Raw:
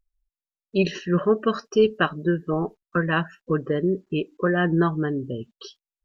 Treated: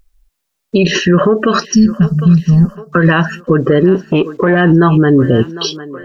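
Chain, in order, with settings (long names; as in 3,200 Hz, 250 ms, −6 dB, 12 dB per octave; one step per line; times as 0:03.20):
0:01.66–0:02.89: gain on a spectral selection 250–4,300 Hz −29 dB
downward compressor, threshold −22 dBFS, peak gain reduction 8.5 dB
feedback echo with a high-pass in the loop 754 ms, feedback 59%, high-pass 300 Hz, level −20 dB
boost into a limiter +23.5 dB
0:03.95–0:04.61: saturating transformer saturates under 280 Hz
level −1 dB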